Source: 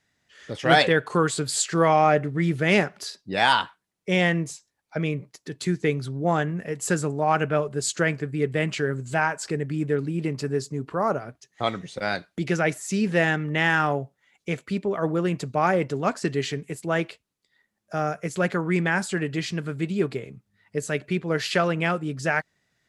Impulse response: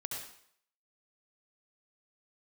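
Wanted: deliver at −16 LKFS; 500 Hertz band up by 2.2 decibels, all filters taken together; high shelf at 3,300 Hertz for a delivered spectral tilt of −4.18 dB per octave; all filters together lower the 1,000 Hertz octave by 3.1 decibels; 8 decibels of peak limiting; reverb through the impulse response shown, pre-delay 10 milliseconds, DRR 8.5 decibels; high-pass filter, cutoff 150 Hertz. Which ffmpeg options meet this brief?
-filter_complex "[0:a]highpass=150,equalizer=frequency=500:width_type=o:gain=4.5,equalizer=frequency=1000:width_type=o:gain=-7,highshelf=frequency=3300:gain=4.5,alimiter=limit=-12.5dB:level=0:latency=1,asplit=2[link_01][link_02];[1:a]atrim=start_sample=2205,adelay=10[link_03];[link_02][link_03]afir=irnorm=-1:irlink=0,volume=-9dB[link_04];[link_01][link_04]amix=inputs=2:normalize=0,volume=9.5dB"

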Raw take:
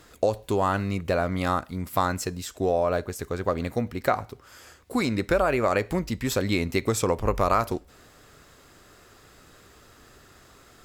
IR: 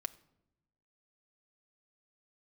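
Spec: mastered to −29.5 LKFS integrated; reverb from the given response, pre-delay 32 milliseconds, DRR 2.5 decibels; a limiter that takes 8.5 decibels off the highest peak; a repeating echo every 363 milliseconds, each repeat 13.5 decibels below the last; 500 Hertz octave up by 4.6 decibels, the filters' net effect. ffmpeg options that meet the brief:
-filter_complex "[0:a]equalizer=frequency=500:width_type=o:gain=5.5,alimiter=limit=-14dB:level=0:latency=1,aecho=1:1:363|726:0.211|0.0444,asplit=2[link_01][link_02];[1:a]atrim=start_sample=2205,adelay=32[link_03];[link_02][link_03]afir=irnorm=-1:irlink=0,volume=-1dB[link_04];[link_01][link_04]amix=inputs=2:normalize=0,volume=-5dB"

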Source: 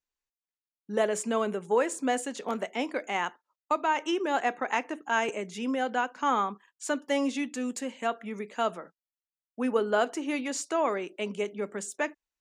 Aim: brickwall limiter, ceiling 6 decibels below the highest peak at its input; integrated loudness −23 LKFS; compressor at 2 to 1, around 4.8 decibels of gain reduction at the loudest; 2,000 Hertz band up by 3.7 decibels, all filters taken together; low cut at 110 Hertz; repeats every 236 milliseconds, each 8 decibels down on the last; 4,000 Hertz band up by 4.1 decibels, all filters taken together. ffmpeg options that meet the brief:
ffmpeg -i in.wav -af "highpass=110,equalizer=frequency=2000:width_type=o:gain=4,equalizer=frequency=4000:width_type=o:gain=4,acompressor=threshold=-28dB:ratio=2,alimiter=limit=-21.5dB:level=0:latency=1,aecho=1:1:236|472|708|944|1180:0.398|0.159|0.0637|0.0255|0.0102,volume=9.5dB" out.wav

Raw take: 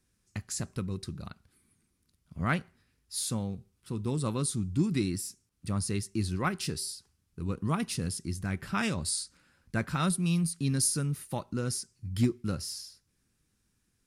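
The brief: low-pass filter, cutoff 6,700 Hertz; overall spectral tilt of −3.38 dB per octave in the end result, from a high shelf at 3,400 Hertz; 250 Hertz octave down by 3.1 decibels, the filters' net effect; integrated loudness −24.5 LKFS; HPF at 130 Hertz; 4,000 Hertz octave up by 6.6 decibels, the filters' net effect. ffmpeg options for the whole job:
ffmpeg -i in.wav -af "highpass=130,lowpass=6700,equalizer=frequency=250:width_type=o:gain=-3.5,highshelf=frequency=3400:gain=6,equalizer=frequency=4000:width_type=o:gain=4.5,volume=8.5dB" out.wav

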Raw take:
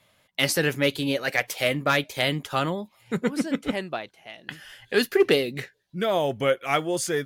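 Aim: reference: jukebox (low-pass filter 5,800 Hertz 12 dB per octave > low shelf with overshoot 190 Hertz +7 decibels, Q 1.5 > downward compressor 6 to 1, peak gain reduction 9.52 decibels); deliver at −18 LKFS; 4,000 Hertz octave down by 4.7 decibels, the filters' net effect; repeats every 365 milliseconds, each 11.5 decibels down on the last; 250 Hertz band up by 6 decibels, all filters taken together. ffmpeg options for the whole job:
ffmpeg -i in.wav -af "lowpass=5800,lowshelf=frequency=190:width_type=q:width=1.5:gain=7,equalizer=frequency=250:width_type=o:gain=8,equalizer=frequency=4000:width_type=o:gain=-6,aecho=1:1:365|730|1095:0.266|0.0718|0.0194,acompressor=threshold=-21dB:ratio=6,volume=9dB" out.wav

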